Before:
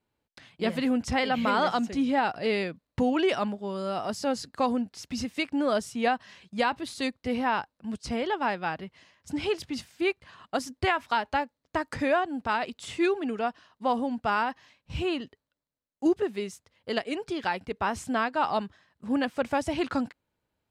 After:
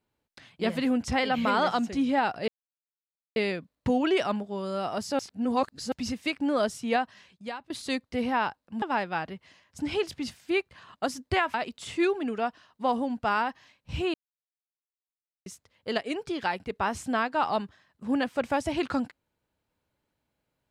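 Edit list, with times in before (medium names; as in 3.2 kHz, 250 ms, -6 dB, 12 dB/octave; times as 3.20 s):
2.48 s: insert silence 0.88 s
4.31–5.04 s: reverse
6.03–6.82 s: fade out, to -22.5 dB
7.94–8.33 s: delete
11.05–12.55 s: delete
15.15–16.47 s: mute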